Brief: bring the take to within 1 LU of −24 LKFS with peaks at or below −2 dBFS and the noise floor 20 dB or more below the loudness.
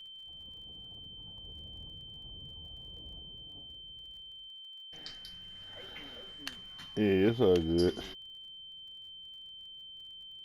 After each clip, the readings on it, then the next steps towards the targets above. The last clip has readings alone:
crackle rate 33 per second; interfering tone 3,100 Hz; level of the tone −46 dBFS; integrated loudness −37.0 LKFS; sample peak −15.5 dBFS; target loudness −24.0 LKFS
→ click removal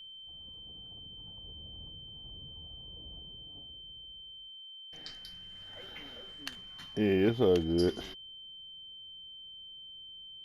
crackle rate 0.096 per second; interfering tone 3,100 Hz; level of the tone −46 dBFS
→ notch filter 3,100 Hz, Q 30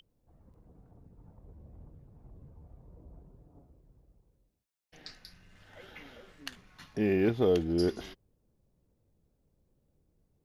interfering tone none found; integrated loudness −30.0 LKFS; sample peak −15.5 dBFS; target loudness −24.0 LKFS
→ level +6 dB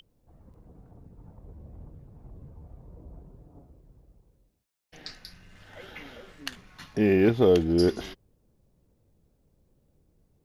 integrated loudness −24.0 LKFS; sample peak −9.5 dBFS; background noise floor −70 dBFS

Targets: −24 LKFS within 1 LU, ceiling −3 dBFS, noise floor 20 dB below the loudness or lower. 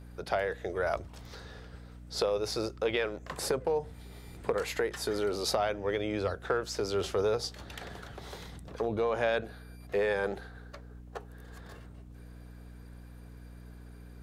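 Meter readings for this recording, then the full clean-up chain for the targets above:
mains hum 60 Hz; hum harmonics up to 300 Hz; level of the hum −46 dBFS; integrated loudness −32.5 LKFS; sample peak −14.0 dBFS; target loudness −24.0 LKFS
→ hum removal 60 Hz, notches 5
level +8.5 dB

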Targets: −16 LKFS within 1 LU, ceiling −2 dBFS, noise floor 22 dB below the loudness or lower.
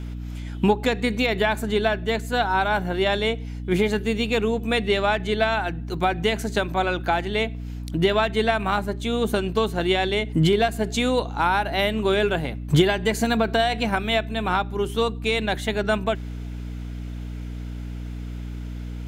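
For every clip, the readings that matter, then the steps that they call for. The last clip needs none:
mains hum 60 Hz; hum harmonics up to 300 Hz; level of the hum −30 dBFS; integrated loudness −23.0 LKFS; sample peak −5.5 dBFS; target loudness −16.0 LKFS
→ mains-hum notches 60/120/180/240/300 Hz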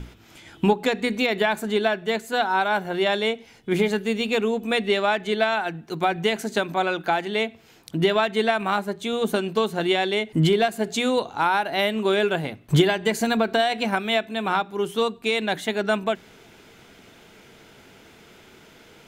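mains hum none found; integrated loudness −23.5 LKFS; sample peak −6.0 dBFS; target loudness −16.0 LKFS
→ level +7.5 dB
brickwall limiter −2 dBFS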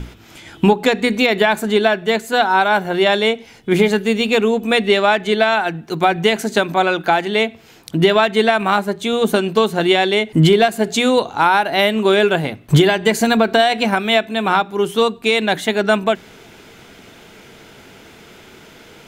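integrated loudness −16.0 LKFS; sample peak −2.0 dBFS; background noise floor −44 dBFS

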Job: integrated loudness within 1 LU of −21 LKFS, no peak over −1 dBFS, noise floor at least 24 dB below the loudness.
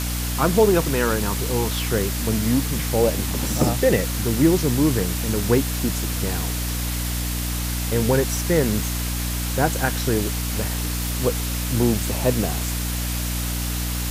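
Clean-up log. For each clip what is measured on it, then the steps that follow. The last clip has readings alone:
mains hum 60 Hz; hum harmonics up to 300 Hz; level of the hum −24 dBFS; background noise floor −25 dBFS; target noise floor −46 dBFS; integrated loudness −22.0 LKFS; sample peak −4.5 dBFS; target loudness −21.0 LKFS
→ hum removal 60 Hz, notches 5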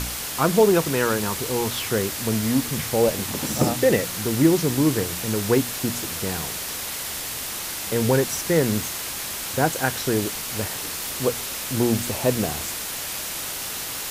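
mains hum none found; background noise floor −31 dBFS; target noise floor −47 dBFS
→ noise reduction from a noise print 16 dB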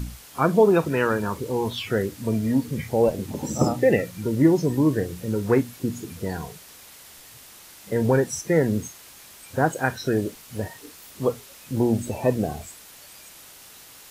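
background noise floor −47 dBFS; target noise floor −48 dBFS
→ noise reduction from a noise print 6 dB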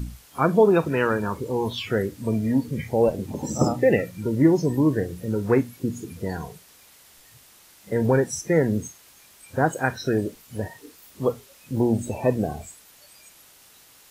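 background noise floor −53 dBFS; integrated loudness −24.0 LKFS; sample peak −6.5 dBFS; target loudness −21.0 LKFS
→ level +3 dB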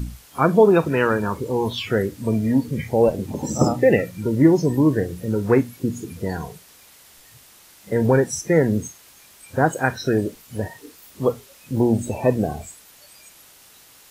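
integrated loudness −21.0 LKFS; sample peak −3.5 dBFS; background noise floor −50 dBFS

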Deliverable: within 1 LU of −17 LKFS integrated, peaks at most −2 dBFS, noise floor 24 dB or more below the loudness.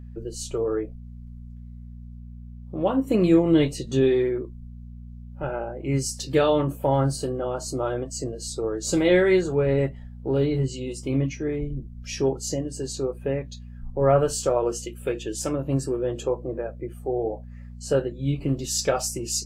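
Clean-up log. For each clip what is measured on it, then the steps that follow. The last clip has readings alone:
mains hum 60 Hz; hum harmonics up to 240 Hz; level of the hum −37 dBFS; integrated loudness −25.0 LKFS; sample peak −7.5 dBFS; target loudness −17.0 LKFS
→ hum removal 60 Hz, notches 4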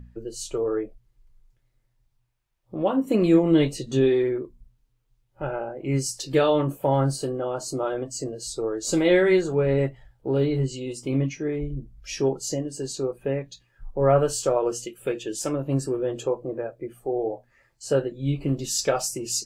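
mains hum none found; integrated loudness −25.0 LKFS; sample peak −7.5 dBFS; target loudness −17.0 LKFS
→ level +8 dB
brickwall limiter −2 dBFS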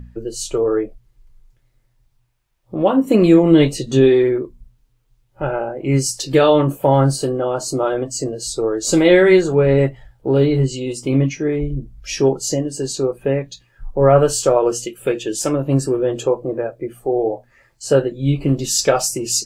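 integrated loudness −17.5 LKFS; sample peak −2.0 dBFS; background noise floor −62 dBFS

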